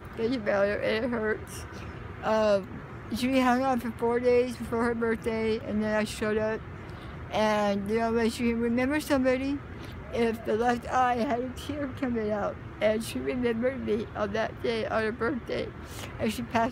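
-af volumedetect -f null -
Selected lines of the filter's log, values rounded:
mean_volume: -28.3 dB
max_volume: -12.1 dB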